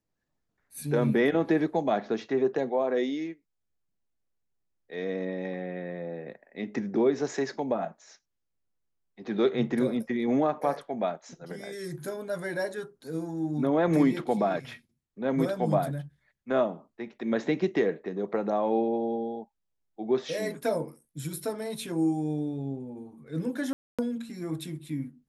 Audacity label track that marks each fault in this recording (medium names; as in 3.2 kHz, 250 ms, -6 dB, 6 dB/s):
23.730000	23.990000	dropout 256 ms